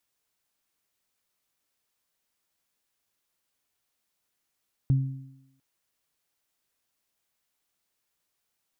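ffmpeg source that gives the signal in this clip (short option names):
-f lavfi -i "aevalsrc='0.15*pow(10,-3*t/0.78)*sin(2*PI*134*t)+0.0251*pow(10,-3*t/1.08)*sin(2*PI*268*t)':d=0.7:s=44100"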